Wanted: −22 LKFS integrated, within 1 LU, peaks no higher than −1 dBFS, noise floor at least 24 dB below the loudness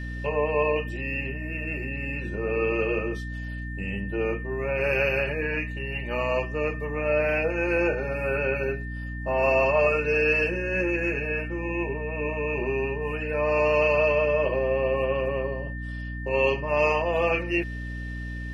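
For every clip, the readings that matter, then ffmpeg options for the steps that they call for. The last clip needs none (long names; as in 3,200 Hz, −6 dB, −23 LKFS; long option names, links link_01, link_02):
mains hum 60 Hz; hum harmonics up to 300 Hz; level of the hum −31 dBFS; interfering tone 1,800 Hz; level of the tone −39 dBFS; integrated loudness −26.0 LKFS; sample peak −10.0 dBFS; target loudness −22.0 LKFS
→ -af "bandreject=frequency=60:width_type=h:width=6,bandreject=frequency=120:width_type=h:width=6,bandreject=frequency=180:width_type=h:width=6,bandreject=frequency=240:width_type=h:width=6,bandreject=frequency=300:width_type=h:width=6"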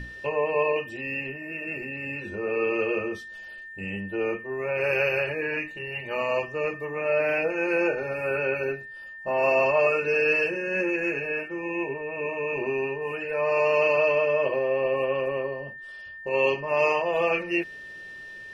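mains hum none found; interfering tone 1,800 Hz; level of the tone −39 dBFS
→ -af "bandreject=frequency=1800:width=30"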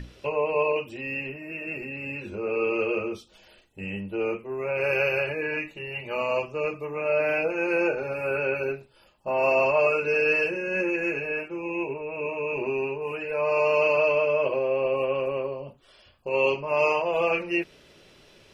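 interfering tone none found; integrated loudness −26.0 LKFS; sample peak −10.5 dBFS; target loudness −22.0 LKFS
→ -af "volume=4dB"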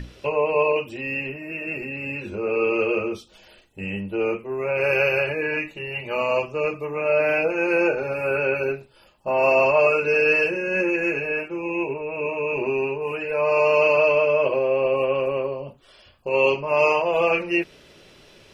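integrated loudness −22.0 LKFS; sample peak −6.5 dBFS; background noise floor −52 dBFS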